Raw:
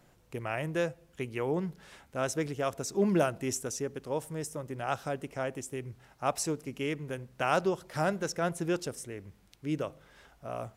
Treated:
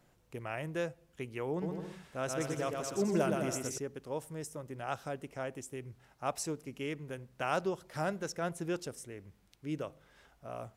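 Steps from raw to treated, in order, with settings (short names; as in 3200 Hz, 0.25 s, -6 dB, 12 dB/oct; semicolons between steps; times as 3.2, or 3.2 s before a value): 1.5–3.78 bouncing-ball echo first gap 0.12 s, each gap 0.75×, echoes 5; gain -5 dB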